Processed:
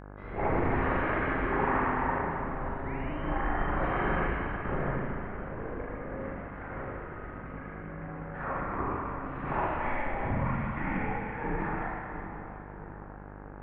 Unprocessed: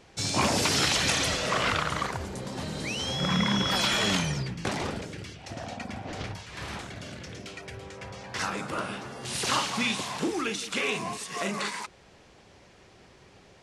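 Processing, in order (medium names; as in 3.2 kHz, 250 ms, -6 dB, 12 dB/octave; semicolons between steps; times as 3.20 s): mistuned SSB -230 Hz 210–2100 Hz; two-band feedback delay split 1.3 kHz, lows 642 ms, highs 365 ms, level -11 dB; reverberation RT60 1.9 s, pre-delay 37 ms, DRR -8 dB; mains buzz 50 Hz, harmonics 34, -38 dBFS -4 dB/octave; trim -8 dB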